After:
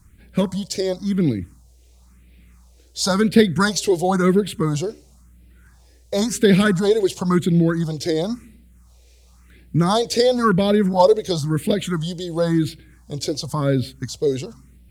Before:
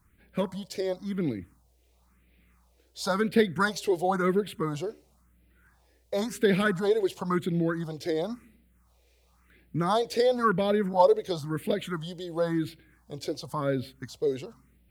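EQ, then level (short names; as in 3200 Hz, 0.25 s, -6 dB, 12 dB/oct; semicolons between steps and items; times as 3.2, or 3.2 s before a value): low shelf 300 Hz +12 dB; bell 6700 Hz +12.5 dB 1.9 oct; +3.0 dB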